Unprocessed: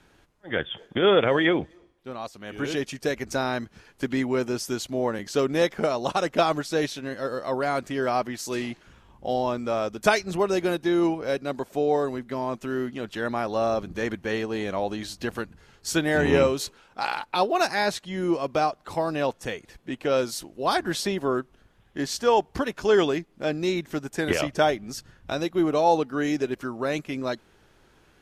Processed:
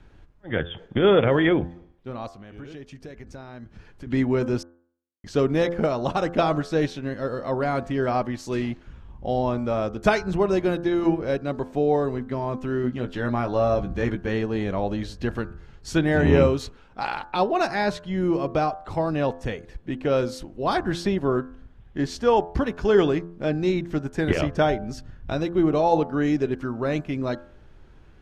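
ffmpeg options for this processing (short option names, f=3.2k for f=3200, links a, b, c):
-filter_complex "[0:a]asettb=1/sr,asplit=3[a][b][c];[a]atrim=end=2.304[d];[b]atrim=start=2.3:end=4.07,asetpts=PTS-STARTPTS,afade=t=in:d=0.004:c=qsin,afade=t=out:st=1.766:d=0.004:c=qsin,acompressor=threshold=-47dB:ratio=2.5:attack=3.2:release=140:knee=1:detection=peak[e];[c]atrim=start=4.066[f];[d][e]acrossfade=d=0.004:c1=hsin:c2=qsin[g];[g][f]acrossfade=d=0.004:c1=qsin:c2=hsin,asettb=1/sr,asplit=3[h][i][j];[h]atrim=end=12.824[k];[i]atrim=start=12.82:end=14.29,asetpts=PTS-STARTPTS,afade=t=in:d=0.004:c=qsin,afade=t=out:st=1.466:d=0.004:c=qsin,asplit=2[l][m];[m]adelay=16,volume=-7dB[n];[l][n]amix=inputs=2:normalize=0,atrim=end_sample=64827[o];[j]atrim=start=14.286[p];[k][o]acrossfade=d=0.004:c1=hsin:c2=qsin[q];[q][p]acrossfade=d=0.004:c1=qsin:c2=hsin,asplit=3[r][s][t];[r]atrim=end=4.63,asetpts=PTS-STARTPTS,afade=t=out:st=4.626:d=0.004:c=hsin[u];[s]atrim=start=4.63:end=5.24,asetpts=PTS-STARTPTS,volume=0[v];[t]atrim=start=5.24,asetpts=PTS-STARTPTS,afade=t=in:d=0.004:c=hsin[w];[u][v][w]concat=n=3:v=0:a=1,aemphasis=mode=reproduction:type=bsi,bandreject=f=85.89:t=h:w=4,bandreject=f=171.78:t=h:w=4,bandreject=f=257.67:t=h:w=4,bandreject=f=343.56:t=h:w=4,bandreject=f=429.45:t=h:w=4,bandreject=f=515.34:t=h:w=4,bandreject=f=601.23:t=h:w=4,bandreject=f=687.12:t=h:w=4,bandreject=f=773.01:t=h:w=4,bandreject=f=858.9:t=h:w=4,bandreject=f=944.79:t=h:w=4,bandreject=f=1.03068k:t=h:w=4,bandreject=f=1.11657k:t=h:w=4,bandreject=f=1.20246k:t=h:w=4,bandreject=f=1.28835k:t=h:w=4,bandreject=f=1.37424k:t=h:w=4,bandreject=f=1.46013k:t=h:w=4,bandreject=f=1.54602k:t=h:w=4,bandreject=f=1.63191k:t=h:w=4,bandreject=f=1.7178k:t=h:w=4"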